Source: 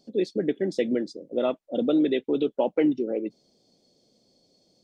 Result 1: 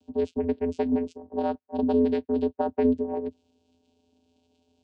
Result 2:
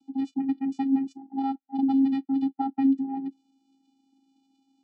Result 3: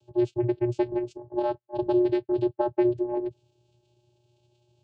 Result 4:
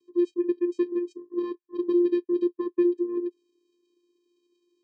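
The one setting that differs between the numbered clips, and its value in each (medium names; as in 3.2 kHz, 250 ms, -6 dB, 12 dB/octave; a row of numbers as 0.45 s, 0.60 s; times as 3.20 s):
vocoder, frequency: 85 Hz, 270 Hz, 120 Hz, 350 Hz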